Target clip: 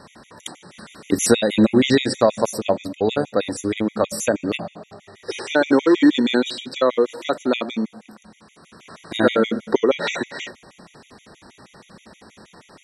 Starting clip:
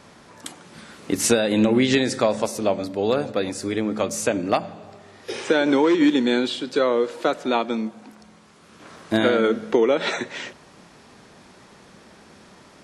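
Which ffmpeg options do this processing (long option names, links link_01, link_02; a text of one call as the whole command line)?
ffmpeg -i in.wav -af "afftfilt=real='re*gt(sin(2*PI*6.3*pts/sr)*(1-2*mod(floor(b*sr/1024/1900),2)),0)':imag='im*gt(sin(2*PI*6.3*pts/sr)*(1-2*mod(floor(b*sr/1024/1900),2)),0)':win_size=1024:overlap=0.75,volume=4.5dB" out.wav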